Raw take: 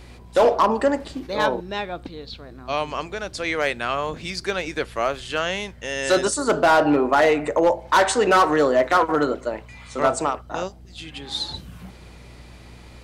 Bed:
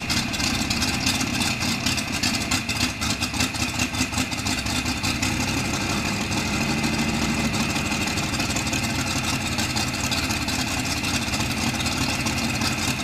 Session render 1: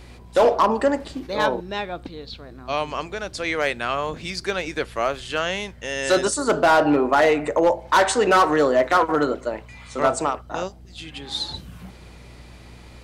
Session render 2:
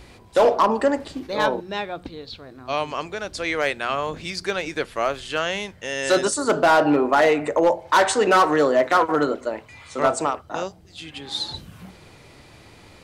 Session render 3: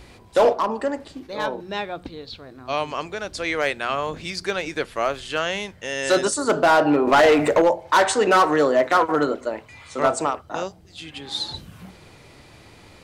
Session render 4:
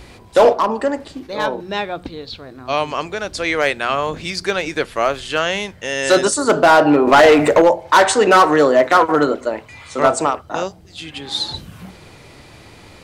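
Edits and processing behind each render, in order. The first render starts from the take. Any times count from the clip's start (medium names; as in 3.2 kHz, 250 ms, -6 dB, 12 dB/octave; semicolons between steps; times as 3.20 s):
no audible change
de-hum 60 Hz, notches 4
0.53–1.60 s: gain -5 dB; 7.07–7.62 s: waveshaping leveller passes 2
trim +5.5 dB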